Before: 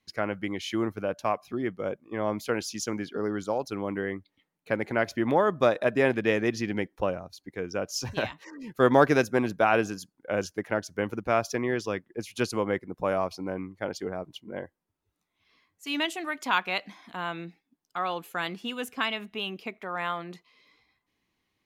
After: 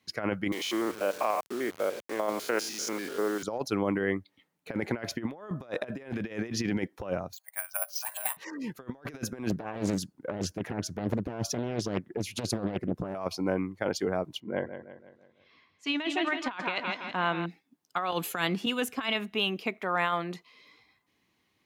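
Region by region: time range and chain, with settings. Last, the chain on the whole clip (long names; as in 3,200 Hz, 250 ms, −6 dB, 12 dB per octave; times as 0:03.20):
0:00.52–0:03.43: spectrum averaged block by block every 100 ms + high-pass filter 390 Hz + bit-depth reduction 8 bits, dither none
0:07.33–0:08.37: linear-phase brick-wall band-pass 580–10,000 Hz + high-shelf EQ 2,900 Hz −12 dB + bad sample-rate conversion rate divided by 4×, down filtered, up zero stuff
0:09.50–0:13.15: low-shelf EQ 390 Hz +11 dB + downward compressor 2 to 1, threshold −26 dBFS + highs frequency-modulated by the lows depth 0.82 ms
0:14.40–0:17.46: low-pass filter 4,100 Hz + repeating echo 166 ms, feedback 48%, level −10.5 dB
0:18.12–0:18.66: low-shelf EQ 200 Hz +6 dB + multiband upward and downward compressor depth 100%
whole clip: high-pass filter 80 Hz; compressor whose output falls as the input rises −31 dBFS, ratio −0.5; level +1 dB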